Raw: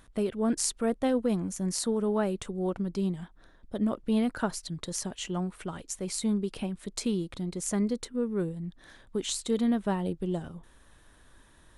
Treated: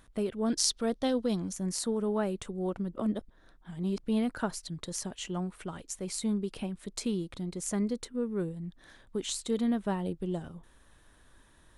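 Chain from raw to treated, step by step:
0:00.46–0:01.53: flat-topped bell 4,400 Hz +9.5 dB 1.1 octaves
0:02.93–0:04.00: reverse
level −2.5 dB

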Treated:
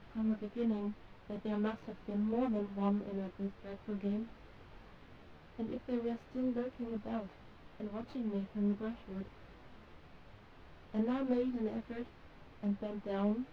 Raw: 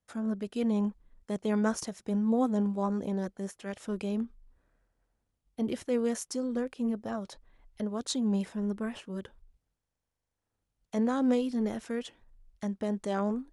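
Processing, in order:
running median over 25 samples
high-shelf EQ 3,100 Hz +11.5 dB
background noise pink −49 dBFS
high-frequency loss of the air 330 metres
micro pitch shift up and down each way 15 cents
level −1.5 dB

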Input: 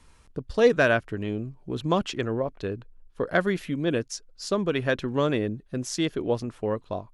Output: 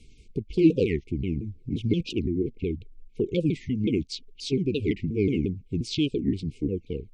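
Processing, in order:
pitch shifter swept by a sawtooth −9 semitones, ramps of 176 ms
linear-phase brick-wall band-stop 490–2,100 Hz
high-shelf EQ 6,400 Hz −11 dB
in parallel at 0 dB: downward compressor, threshold −36 dBFS, peak gain reduction 20 dB
on the sum: wow of a warped record 45 rpm, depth 250 cents

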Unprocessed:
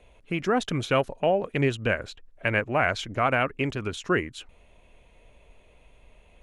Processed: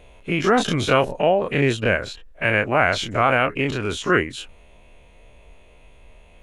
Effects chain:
every bin's largest magnitude spread in time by 60 ms
speech leveller within 4 dB 2 s
level +2 dB

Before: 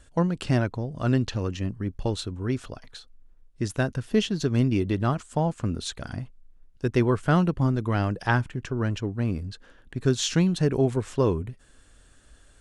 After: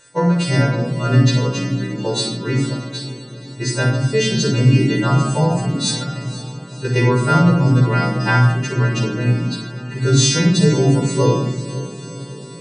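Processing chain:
every partial snapped to a pitch grid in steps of 2 semitones
in parallel at −2 dB: brickwall limiter −16.5 dBFS, peak gain reduction 8 dB
0:05.94–0:06.96: on the sum: output level in coarse steps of 10 dB
brick-wall band-pass 110–9,600 Hz
on a send: feedback delay with all-pass diffusion 503 ms, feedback 63%, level −15 dB
on the sum: rectangular room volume 3,800 cubic metres, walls furnished, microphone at 4.7 metres
level −1 dB

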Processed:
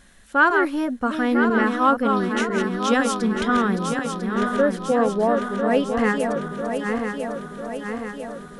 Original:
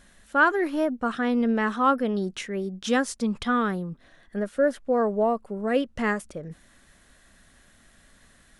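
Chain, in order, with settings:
feedback delay that plays each chunk backwards 499 ms, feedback 76%, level −5.5 dB
notch filter 620 Hz, Q 12
level +3 dB

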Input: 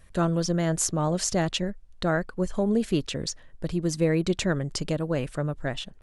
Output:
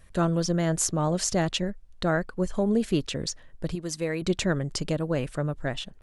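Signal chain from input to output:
0:03.75–0:04.22: low-shelf EQ 470 Hz −10.5 dB

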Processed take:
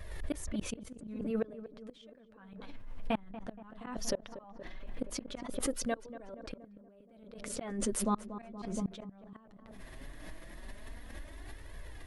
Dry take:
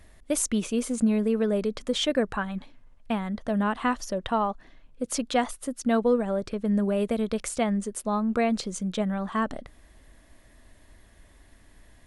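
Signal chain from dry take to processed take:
parametric band 7,900 Hz −6.5 dB 0.99 octaves
reversed playback
downward compressor 5 to 1, threshold −32 dBFS, peak gain reduction 13 dB
reversed playback
flanger 0.17 Hz, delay 1.7 ms, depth 9.4 ms, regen −4%
gate with flip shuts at −30 dBFS, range −34 dB
on a send: feedback echo with a low-pass in the loop 236 ms, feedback 56%, low-pass 1,500 Hz, level −13 dB
on the sum: background raised ahead of every attack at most 48 dB per second
level +8 dB

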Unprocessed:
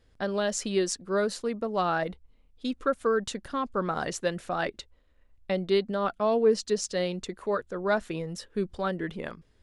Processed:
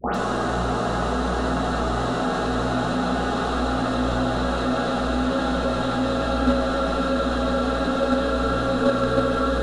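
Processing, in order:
on a send: feedback delay with all-pass diffusion 556 ms, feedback 41%, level −6 dB
on the sum: mains hum 60 Hz, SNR 10 dB
extreme stretch with random phases 24×, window 1.00 s, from 0:02.40
all-pass dispersion highs, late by 149 ms, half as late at 1,500 Hz
in parallel at +1.5 dB: output level in coarse steps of 9 dB
on the sum: noise gate with hold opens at −21 dBFS
level +3.5 dB

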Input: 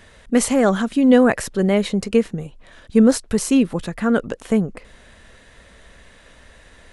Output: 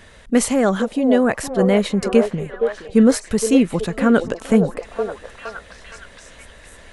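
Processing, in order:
speech leveller 0.5 s
on a send: echo through a band-pass that steps 467 ms, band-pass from 520 Hz, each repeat 0.7 octaves, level −3 dB

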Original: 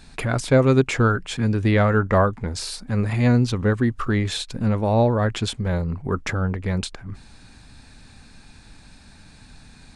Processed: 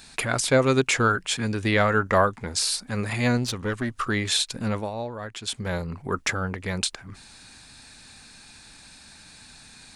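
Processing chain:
spectral tilt +2.5 dB per octave
0:03.37–0:03.94: tube saturation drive 17 dB, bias 0.55
0:04.77–0:05.59: duck −11 dB, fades 0.14 s

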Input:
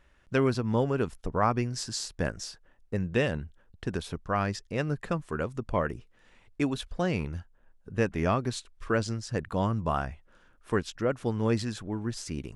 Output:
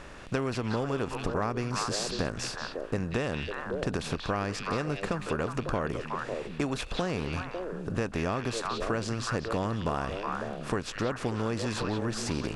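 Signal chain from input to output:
compressor on every frequency bin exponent 0.6
echo through a band-pass that steps 183 ms, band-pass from 3,200 Hz, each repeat −1.4 octaves, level −1.5 dB
downward compressor, threshold −26 dBFS, peak gain reduction 9.5 dB

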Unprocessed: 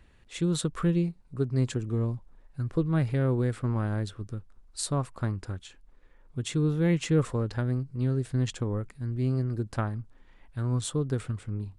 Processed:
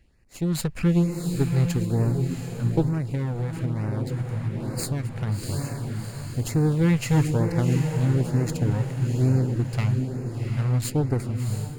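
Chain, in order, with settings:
lower of the sound and its delayed copy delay 0.43 ms
feedback delay with all-pass diffusion 719 ms, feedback 53%, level −5.5 dB
0:02.88–0:05.27: downward compressor, threshold −28 dBFS, peak gain reduction 8 dB
auto-filter notch sine 1.1 Hz 280–3,400 Hz
automatic gain control gain up to 7.5 dB
level −2.5 dB

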